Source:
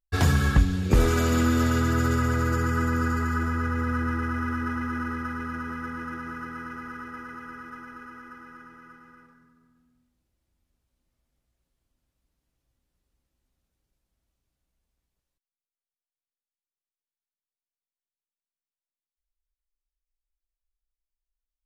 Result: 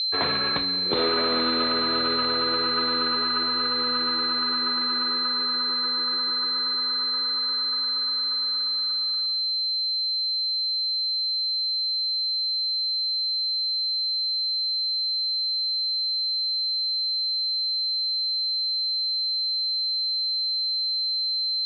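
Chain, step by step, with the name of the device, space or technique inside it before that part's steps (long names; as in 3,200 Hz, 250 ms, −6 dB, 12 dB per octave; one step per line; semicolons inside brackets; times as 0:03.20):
toy sound module (linearly interpolated sample-rate reduction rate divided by 8×; switching amplifier with a slow clock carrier 4,100 Hz; loudspeaker in its box 520–4,000 Hz, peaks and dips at 800 Hz −6 dB, 1,500 Hz −4 dB, 2,300 Hz +4 dB, 3,600 Hz +10 dB)
level +6.5 dB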